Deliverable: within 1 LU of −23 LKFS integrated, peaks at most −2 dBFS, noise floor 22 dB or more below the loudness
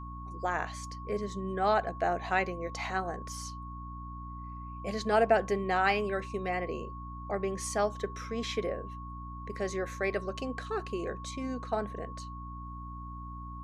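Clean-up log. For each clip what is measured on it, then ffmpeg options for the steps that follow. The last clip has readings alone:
mains hum 60 Hz; hum harmonics up to 300 Hz; level of the hum −41 dBFS; interfering tone 1,100 Hz; level of the tone −44 dBFS; integrated loudness −33.5 LKFS; sample peak −12.5 dBFS; target loudness −23.0 LKFS
→ -af "bandreject=frequency=60:width_type=h:width=4,bandreject=frequency=120:width_type=h:width=4,bandreject=frequency=180:width_type=h:width=4,bandreject=frequency=240:width_type=h:width=4,bandreject=frequency=300:width_type=h:width=4"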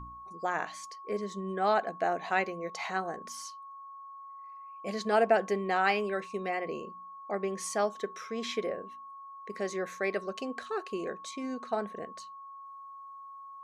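mains hum none found; interfering tone 1,100 Hz; level of the tone −44 dBFS
→ -af "bandreject=frequency=1100:width=30"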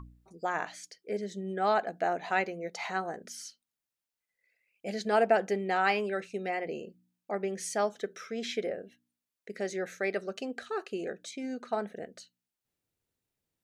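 interfering tone none found; integrated loudness −33.0 LKFS; sample peak −12.5 dBFS; target loudness −23.0 LKFS
→ -af "volume=10dB"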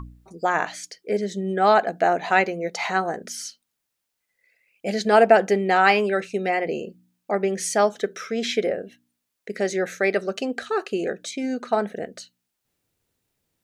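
integrated loudness −23.0 LKFS; sample peak −2.5 dBFS; background noise floor −80 dBFS

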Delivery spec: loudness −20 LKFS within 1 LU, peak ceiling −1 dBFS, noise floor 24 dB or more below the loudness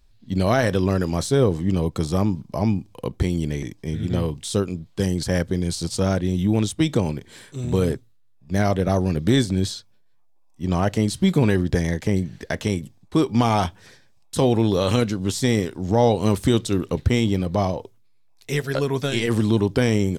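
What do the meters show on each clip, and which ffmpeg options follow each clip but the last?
integrated loudness −22.5 LKFS; sample peak −5.5 dBFS; target loudness −20.0 LKFS
→ -af "volume=2.5dB"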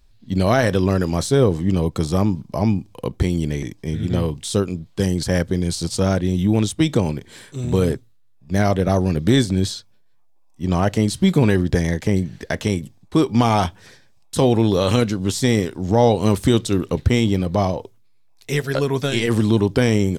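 integrated loudness −20.0 LKFS; sample peak −3.0 dBFS; background noise floor −52 dBFS

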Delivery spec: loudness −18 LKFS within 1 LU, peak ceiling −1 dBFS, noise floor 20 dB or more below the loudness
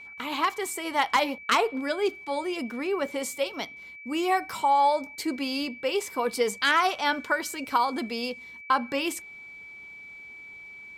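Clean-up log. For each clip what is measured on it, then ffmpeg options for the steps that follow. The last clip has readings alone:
interfering tone 2,300 Hz; level of the tone −42 dBFS; integrated loudness −27.0 LKFS; sample peak −10.5 dBFS; target loudness −18.0 LKFS
→ -af "bandreject=frequency=2300:width=30"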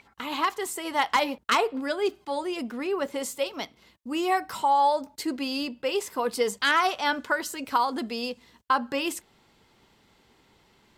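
interfering tone none found; integrated loudness −27.0 LKFS; sample peak −10.5 dBFS; target loudness −18.0 LKFS
→ -af "volume=9dB"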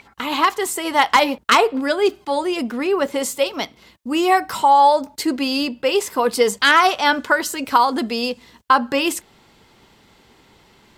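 integrated loudness −18.0 LKFS; sample peak −1.5 dBFS; background noise floor −54 dBFS

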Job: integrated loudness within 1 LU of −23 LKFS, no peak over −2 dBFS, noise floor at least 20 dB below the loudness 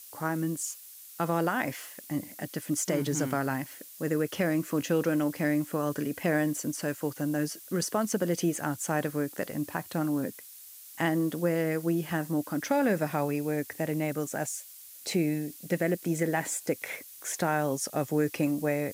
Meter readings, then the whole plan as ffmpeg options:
background noise floor −49 dBFS; target noise floor −51 dBFS; integrated loudness −30.5 LKFS; sample peak −15.0 dBFS; target loudness −23.0 LKFS
→ -af "afftdn=noise_reduction=6:noise_floor=-49"
-af "volume=7.5dB"

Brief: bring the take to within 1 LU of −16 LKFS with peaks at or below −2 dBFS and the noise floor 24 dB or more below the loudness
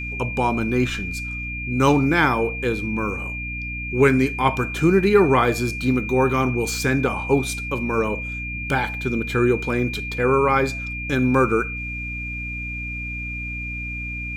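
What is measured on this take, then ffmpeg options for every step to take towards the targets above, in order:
mains hum 60 Hz; hum harmonics up to 300 Hz; level of the hum −30 dBFS; interfering tone 2,400 Hz; level of the tone −29 dBFS; integrated loudness −21.5 LKFS; sample peak −4.0 dBFS; target loudness −16.0 LKFS
→ -af "bandreject=frequency=60:width_type=h:width=4,bandreject=frequency=120:width_type=h:width=4,bandreject=frequency=180:width_type=h:width=4,bandreject=frequency=240:width_type=h:width=4,bandreject=frequency=300:width_type=h:width=4"
-af "bandreject=frequency=2400:width=30"
-af "volume=5.5dB,alimiter=limit=-2dB:level=0:latency=1"

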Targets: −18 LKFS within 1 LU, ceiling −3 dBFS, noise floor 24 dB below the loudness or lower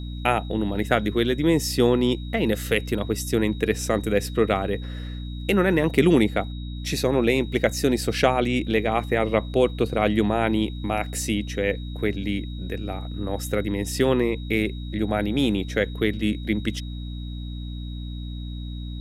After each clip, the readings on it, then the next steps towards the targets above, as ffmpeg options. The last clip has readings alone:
mains hum 60 Hz; hum harmonics up to 300 Hz; level of the hum −30 dBFS; interfering tone 3,800 Hz; level of the tone −45 dBFS; integrated loudness −24.0 LKFS; sample peak −3.5 dBFS; target loudness −18.0 LKFS
→ -af "bandreject=frequency=60:width_type=h:width=6,bandreject=frequency=120:width_type=h:width=6,bandreject=frequency=180:width_type=h:width=6,bandreject=frequency=240:width_type=h:width=6,bandreject=frequency=300:width_type=h:width=6"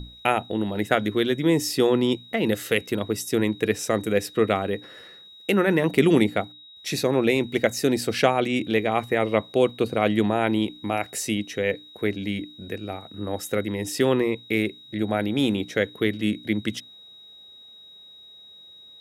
mains hum none found; interfering tone 3,800 Hz; level of the tone −45 dBFS
→ -af "bandreject=frequency=3800:width=30"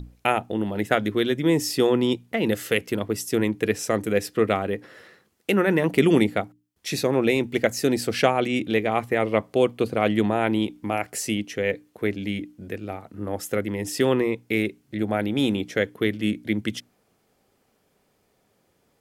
interfering tone none found; integrated loudness −24.0 LKFS; sample peak −4.0 dBFS; target loudness −18.0 LKFS
→ -af "volume=6dB,alimiter=limit=-3dB:level=0:latency=1"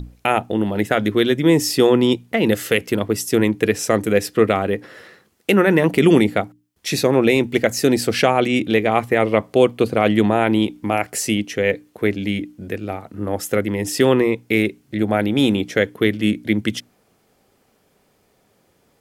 integrated loudness −18.5 LKFS; sample peak −3.0 dBFS; background noise floor −62 dBFS

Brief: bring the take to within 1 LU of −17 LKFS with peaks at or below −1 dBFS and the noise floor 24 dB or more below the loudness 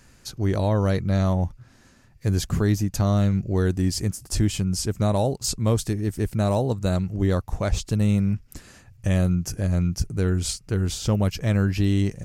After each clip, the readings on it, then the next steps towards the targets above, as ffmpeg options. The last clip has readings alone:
integrated loudness −24.0 LKFS; sample peak −9.5 dBFS; target loudness −17.0 LKFS
→ -af "volume=7dB"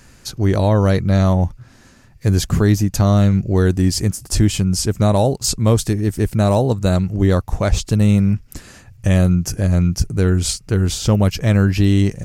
integrated loudness −17.0 LKFS; sample peak −2.5 dBFS; background noise floor −47 dBFS

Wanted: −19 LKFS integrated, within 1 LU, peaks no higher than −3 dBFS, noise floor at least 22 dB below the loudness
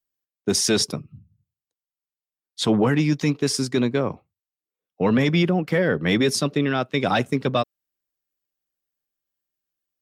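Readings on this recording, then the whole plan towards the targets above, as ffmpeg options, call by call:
integrated loudness −22.0 LKFS; sample peak −8.5 dBFS; target loudness −19.0 LKFS
→ -af "volume=3dB"

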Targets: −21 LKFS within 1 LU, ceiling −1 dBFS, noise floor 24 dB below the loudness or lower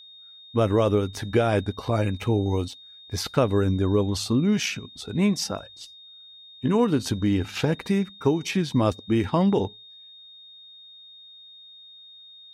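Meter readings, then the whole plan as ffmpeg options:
interfering tone 3,700 Hz; level of the tone −45 dBFS; integrated loudness −24.5 LKFS; sample peak −8.0 dBFS; target loudness −21.0 LKFS
→ -af "bandreject=frequency=3700:width=30"
-af "volume=3.5dB"

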